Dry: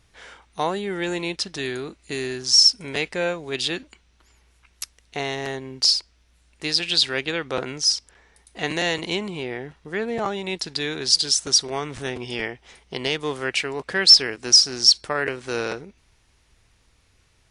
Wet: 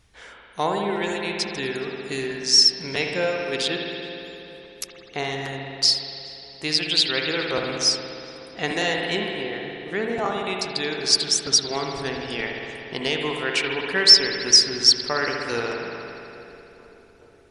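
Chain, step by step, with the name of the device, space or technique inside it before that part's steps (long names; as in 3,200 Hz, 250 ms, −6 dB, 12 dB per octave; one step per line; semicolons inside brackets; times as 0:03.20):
reverb reduction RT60 1.4 s
dub delay into a spring reverb (feedback echo with a low-pass in the loop 423 ms, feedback 76%, low-pass 1,700 Hz, level −19 dB; spring reverb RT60 2.9 s, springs 59 ms, chirp 25 ms, DRR 0.5 dB)
0:07.96–0:08.64: high-shelf EQ 10,000 Hz −11.5 dB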